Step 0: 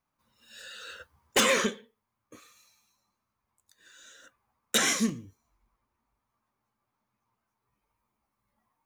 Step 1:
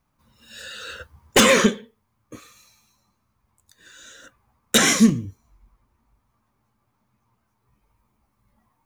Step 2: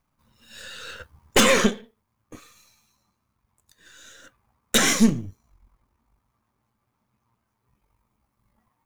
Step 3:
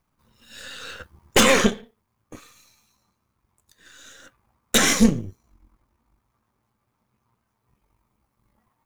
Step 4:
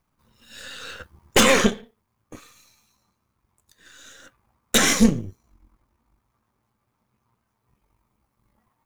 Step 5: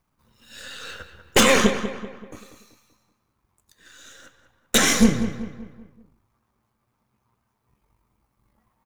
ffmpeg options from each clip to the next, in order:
-af "lowshelf=f=230:g=11,volume=2.37"
-af "aeval=exprs='if(lt(val(0),0),0.447*val(0),val(0))':c=same"
-af "tremolo=f=270:d=0.519,volume=1.5"
-af anull
-filter_complex "[0:a]asplit=2[s0][s1];[s1]adelay=192,lowpass=f=3000:p=1,volume=0.316,asplit=2[s2][s3];[s3]adelay=192,lowpass=f=3000:p=1,volume=0.45,asplit=2[s4][s5];[s5]adelay=192,lowpass=f=3000:p=1,volume=0.45,asplit=2[s6][s7];[s7]adelay=192,lowpass=f=3000:p=1,volume=0.45,asplit=2[s8][s9];[s9]adelay=192,lowpass=f=3000:p=1,volume=0.45[s10];[s0][s2][s4][s6][s8][s10]amix=inputs=6:normalize=0"

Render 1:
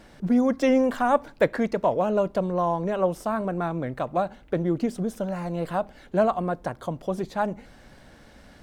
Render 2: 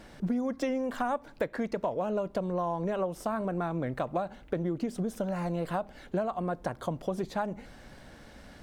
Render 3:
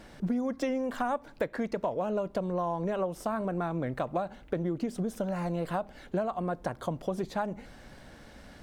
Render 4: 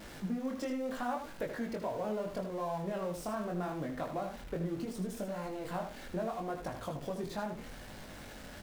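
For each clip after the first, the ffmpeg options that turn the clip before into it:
-af "acompressor=threshold=0.0447:ratio=10"
-af anull
-filter_complex "[0:a]aeval=exprs='val(0)+0.5*0.0126*sgn(val(0))':c=same,flanger=delay=19:depth=5:speed=0.75,asplit=2[s0][s1];[s1]aecho=0:1:78:0.398[s2];[s0][s2]amix=inputs=2:normalize=0,volume=0.596"

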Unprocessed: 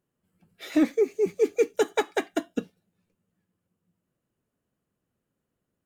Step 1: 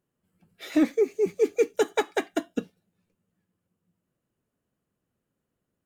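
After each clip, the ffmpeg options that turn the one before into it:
-af anull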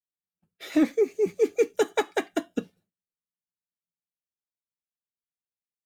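-af "agate=range=0.0224:threshold=0.00251:ratio=3:detection=peak"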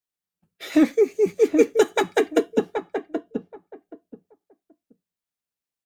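-filter_complex "[0:a]asplit=2[s0][s1];[s1]adelay=777,lowpass=f=830:p=1,volume=0.631,asplit=2[s2][s3];[s3]adelay=777,lowpass=f=830:p=1,volume=0.21,asplit=2[s4][s5];[s5]adelay=777,lowpass=f=830:p=1,volume=0.21[s6];[s0][s2][s4][s6]amix=inputs=4:normalize=0,volume=1.68"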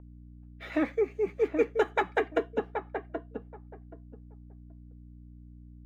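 -filter_complex "[0:a]aeval=exprs='val(0)+0.02*(sin(2*PI*60*n/s)+sin(2*PI*2*60*n/s)/2+sin(2*PI*3*60*n/s)/3+sin(2*PI*4*60*n/s)/4+sin(2*PI*5*60*n/s)/5)':c=same,acrossover=split=550 2600:gain=0.251 1 0.0794[s0][s1][s2];[s0][s1][s2]amix=inputs=3:normalize=0,volume=0.794"

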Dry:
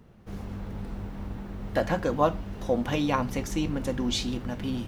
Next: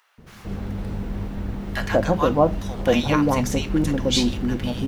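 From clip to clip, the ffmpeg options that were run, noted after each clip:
-filter_complex "[0:a]acrossover=split=1000[s0][s1];[s0]adelay=180[s2];[s2][s1]amix=inputs=2:normalize=0,volume=2.37"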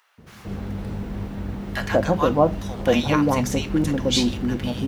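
-af "highpass=49"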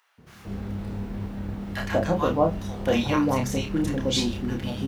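-filter_complex "[0:a]asplit=2[s0][s1];[s1]adelay=30,volume=0.596[s2];[s0][s2]amix=inputs=2:normalize=0,volume=0.562"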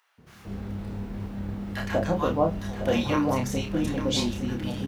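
-af "aecho=1:1:861:0.282,volume=0.794"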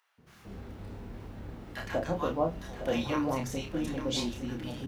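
-af "bandreject=f=50:t=h:w=6,bandreject=f=100:t=h:w=6,bandreject=f=150:t=h:w=6,bandreject=f=200:t=h:w=6,volume=0.531"

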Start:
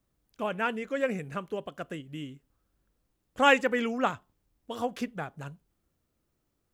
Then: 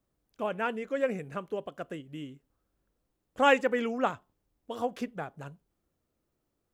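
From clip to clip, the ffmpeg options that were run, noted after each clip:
-af "equalizer=f=520:w=0.56:g=5,volume=0.596"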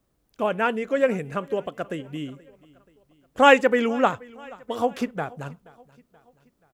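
-af "aecho=1:1:479|958|1437:0.0708|0.0354|0.0177,volume=2.51"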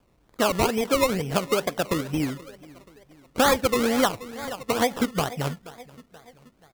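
-af "acompressor=threshold=0.0447:ratio=4,acrusher=samples=22:mix=1:aa=0.000001:lfo=1:lforange=13.2:lforate=2.2,volume=2.37"

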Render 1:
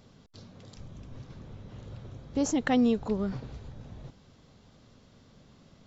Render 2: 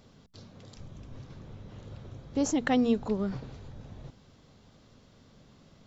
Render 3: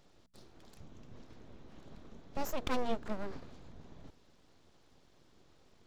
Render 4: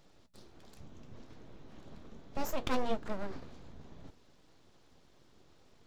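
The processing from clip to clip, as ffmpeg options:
-af "bandreject=f=60:t=h:w=6,bandreject=f=120:t=h:w=6,bandreject=f=180:t=h:w=6,bandreject=f=240:t=h:w=6"
-af "aeval=exprs='abs(val(0))':c=same,volume=0.531"
-af "flanger=delay=6.1:depth=8.5:regen=-63:speed=0.67:shape=sinusoidal,volume=1.88"

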